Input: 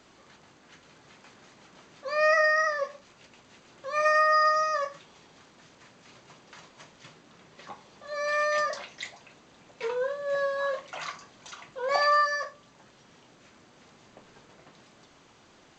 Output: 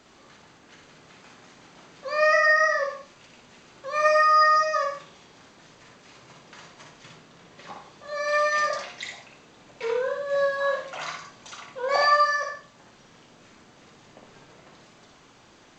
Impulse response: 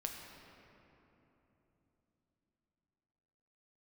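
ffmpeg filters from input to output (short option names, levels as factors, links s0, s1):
-filter_complex "[0:a]asplit=2[s0][s1];[1:a]atrim=start_sample=2205,afade=t=out:st=0.17:d=0.01,atrim=end_sample=7938,adelay=59[s2];[s1][s2]afir=irnorm=-1:irlink=0,volume=0.944[s3];[s0][s3]amix=inputs=2:normalize=0,volume=1.19"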